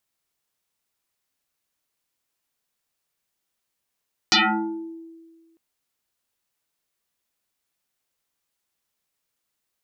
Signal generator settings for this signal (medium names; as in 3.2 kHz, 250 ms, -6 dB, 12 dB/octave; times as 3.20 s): FM tone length 1.25 s, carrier 329 Hz, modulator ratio 1.65, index 11, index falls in 0.77 s exponential, decay 1.63 s, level -12.5 dB